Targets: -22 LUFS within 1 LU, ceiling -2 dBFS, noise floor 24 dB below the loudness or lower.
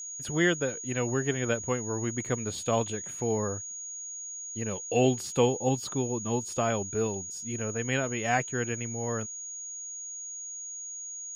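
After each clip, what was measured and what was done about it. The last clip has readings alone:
steady tone 6.7 kHz; tone level -37 dBFS; loudness -30.5 LUFS; peak level -11.5 dBFS; loudness target -22.0 LUFS
-> band-stop 6.7 kHz, Q 30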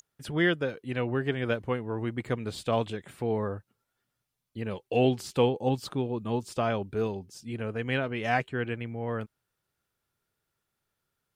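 steady tone not found; loudness -30.5 LUFS; peak level -12.0 dBFS; loudness target -22.0 LUFS
-> trim +8.5 dB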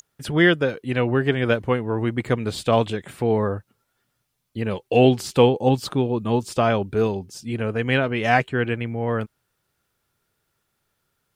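loudness -22.0 LUFS; peak level -3.5 dBFS; noise floor -75 dBFS

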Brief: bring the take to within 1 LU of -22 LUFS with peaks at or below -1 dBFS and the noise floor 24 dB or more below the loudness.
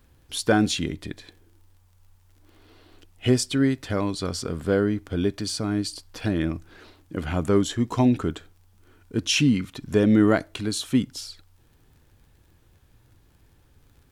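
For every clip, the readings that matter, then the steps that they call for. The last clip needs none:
tick rate 27 per s; loudness -24.5 LUFS; peak level -7.0 dBFS; loudness target -22.0 LUFS
-> de-click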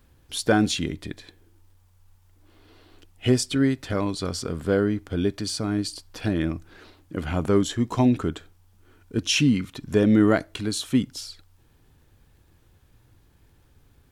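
tick rate 0.28 per s; loudness -24.5 LUFS; peak level -7.0 dBFS; loudness target -22.0 LUFS
-> trim +2.5 dB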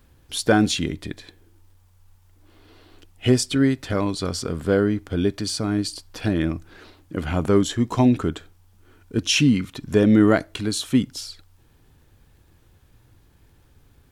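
loudness -22.0 LUFS; peak level -4.5 dBFS; noise floor -57 dBFS

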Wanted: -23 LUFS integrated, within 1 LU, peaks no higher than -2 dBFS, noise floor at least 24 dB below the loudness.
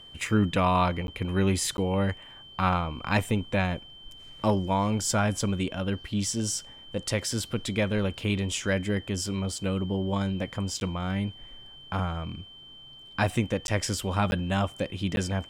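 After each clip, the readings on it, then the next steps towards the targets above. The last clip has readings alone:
dropouts 6; longest dropout 11 ms; steady tone 3.1 kHz; tone level -46 dBFS; loudness -28.5 LUFS; peak level -10.0 dBFS; loudness target -23.0 LUFS
-> interpolate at 1.07/1.77/10.80/13.67/14.31/15.16 s, 11 ms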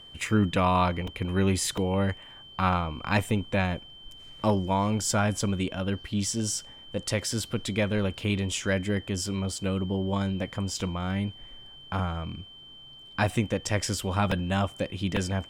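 dropouts 0; steady tone 3.1 kHz; tone level -46 dBFS
-> band-stop 3.1 kHz, Q 30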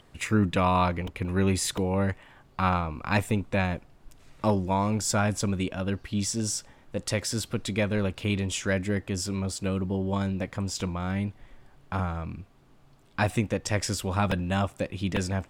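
steady tone not found; loudness -28.5 LUFS; peak level -10.0 dBFS; loudness target -23.0 LUFS
-> trim +5.5 dB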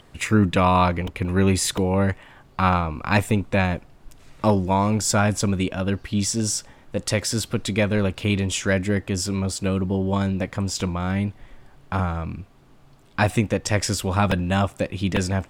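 loudness -23.0 LUFS; peak level -4.5 dBFS; noise floor -51 dBFS

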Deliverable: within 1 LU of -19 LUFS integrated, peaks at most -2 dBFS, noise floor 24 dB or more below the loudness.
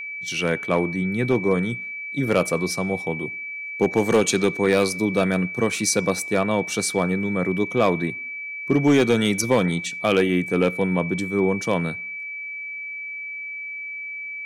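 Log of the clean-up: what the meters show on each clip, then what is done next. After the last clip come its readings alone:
clipped samples 0.3%; clipping level -10.5 dBFS; steady tone 2.3 kHz; tone level -30 dBFS; loudness -22.5 LUFS; peak level -10.5 dBFS; loudness target -19.0 LUFS
-> clip repair -10.5 dBFS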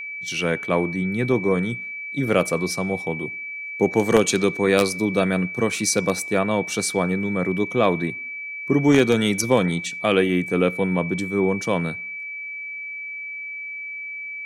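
clipped samples 0.0%; steady tone 2.3 kHz; tone level -30 dBFS
-> band-stop 2.3 kHz, Q 30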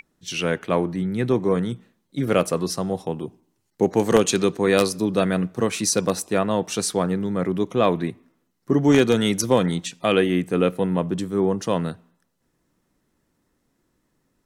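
steady tone not found; loudness -22.0 LUFS; peak level -1.5 dBFS; loudness target -19.0 LUFS
-> trim +3 dB; peak limiter -2 dBFS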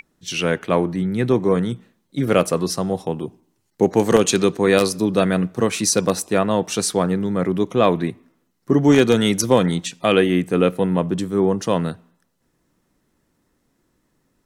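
loudness -19.5 LUFS; peak level -2.0 dBFS; noise floor -69 dBFS

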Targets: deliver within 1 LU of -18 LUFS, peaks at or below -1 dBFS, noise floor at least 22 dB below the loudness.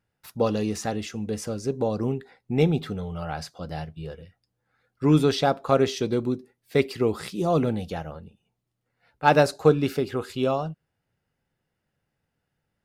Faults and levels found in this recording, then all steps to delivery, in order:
loudness -25.5 LUFS; peak level -4.0 dBFS; loudness target -18.0 LUFS
-> trim +7.5 dB; peak limiter -1 dBFS

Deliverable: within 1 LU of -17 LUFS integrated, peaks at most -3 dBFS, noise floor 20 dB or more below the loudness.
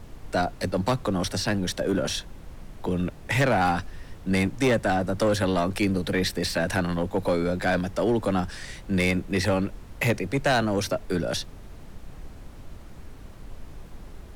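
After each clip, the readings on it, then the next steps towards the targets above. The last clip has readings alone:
clipped samples 1.4%; clipping level -16.5 dBFS; noise floor -44 dBFS; noise floor target -46 dBFS; loudness -26.0 LUFS; peak level -16.5 dBFS; loudness target -17.0 LUFS
-> clip repair -16.5 dBFS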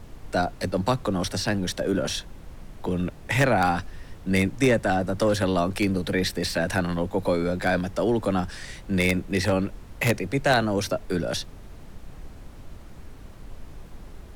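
clipped samples 0.0%; noise floor -44 dBFS; noise floor target -45 dBFS
-> noise print and reduce 6 dB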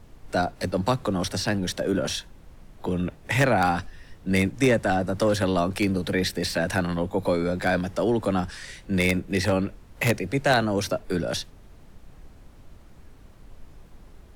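noise floor -50 dBFS; loudness -25.0 LUFS; peak level -7.5 dBFS; loudness target -17.0 LUFS
-> trim +8 dB; peak limiter -3 dBFS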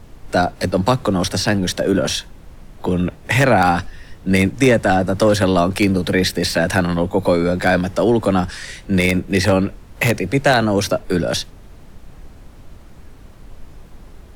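loudness -17.5 LUFS; peak level -3.0 dBFS; noise floor -42 dBFS

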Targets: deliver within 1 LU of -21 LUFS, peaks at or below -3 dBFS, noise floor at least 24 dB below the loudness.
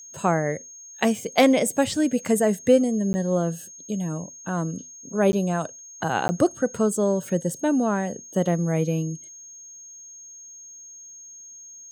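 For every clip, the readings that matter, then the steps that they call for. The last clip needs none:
dropouts 3; longest dropout 10 ms; steady tone 6.5 kHz; tone level -41 dBFS; loudness -24.0 LUFS; peak level -6.5 dBFS; loudness target -21.0 LUFS
-> interpolate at 3.13/5.32/6.28 s, 10 ms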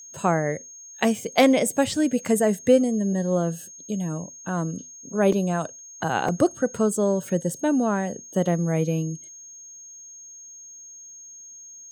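dropouts 0; steady tone 6.5 kHz; tone level -41 dBFS
-> band-stop 6.5 kHz, Q 30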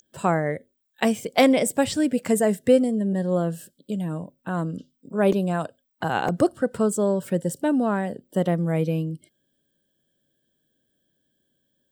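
steady tone not found; loudness -24.0 LUFS; peak level -6.5 dBFS; loudness target -21.0 LUFS
-> trim +3 dB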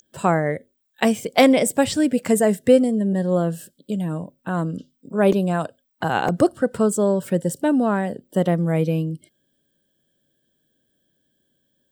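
loudness -21.0 LUFS; peak level -3.5 dBFS; noise floor -71 dBFS

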